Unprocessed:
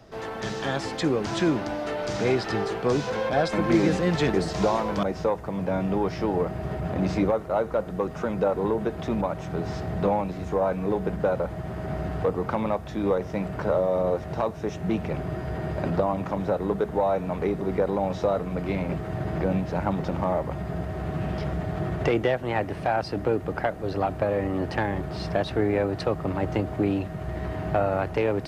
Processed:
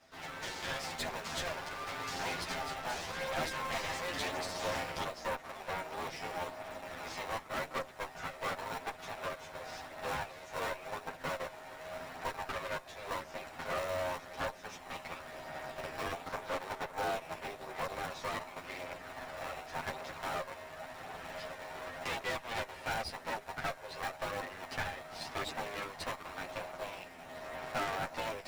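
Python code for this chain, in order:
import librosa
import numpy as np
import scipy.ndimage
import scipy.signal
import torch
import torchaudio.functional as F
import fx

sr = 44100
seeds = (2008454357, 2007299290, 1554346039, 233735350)

p1 = fx.lower_of_two(x, sr, delay_ms=7.6)
p2 = scipy.signal.sosfilt(scipy.signal.bessel(6, 1000.0, 'highpass', norm='mag', fs=sr, output='sos'), p1)
p3 = fx.sample_hold(p2, sr, seeds[0], rate_hz=1600.0, jitter_pct=0)
p4 = p2 + (p3 * 10.0 ** (-5.0 / 20.0))
p5 = fx.chorus_voices(p4, sr, voices=2, hz=0.45, base_ms=12, depth_ms=1.1, mix_pct=50)
p6 = fx.tube_stage(p5, sr, drive_db=32.0, bias=0.65)
y = p6 * 10.0 ** (2.5 / 20.0)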